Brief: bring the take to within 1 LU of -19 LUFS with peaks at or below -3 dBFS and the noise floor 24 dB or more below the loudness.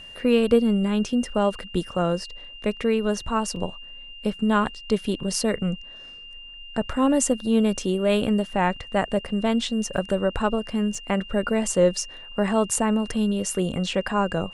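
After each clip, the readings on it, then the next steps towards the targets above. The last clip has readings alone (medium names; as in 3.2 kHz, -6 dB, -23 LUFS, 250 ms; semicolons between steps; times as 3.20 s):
dropouts 3; longest dropout 2.6 ms; steady tone 2.8 kHz; tone level -40 dBFS; loudness -24.0 LUFS; peak level -7.0 dBFS; loudness target -19.0 LUFS
-> interpolate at 3.56/9.97/10.95 s, 2.6 ms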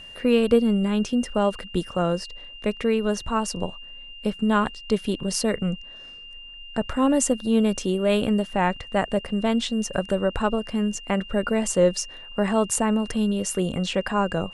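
dropouts 0; steady tone 2.8 kHz; tone level -40 dBFS
-> band-stop 2.8 kHz, Q 30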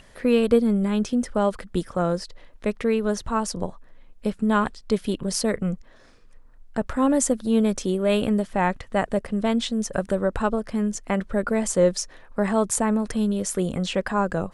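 steady tone not found; loudness -24.0 LUFS; peak level -7.0 dBFS; loudness target -19.0 LUFS
-> trim +5 dB; peak limiter -3 dBFS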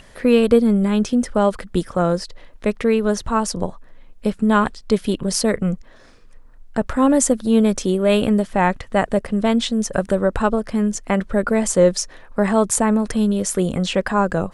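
loudness -19.0 LUFS; peak level -3.0 dBFS; noise floor -45 dBFS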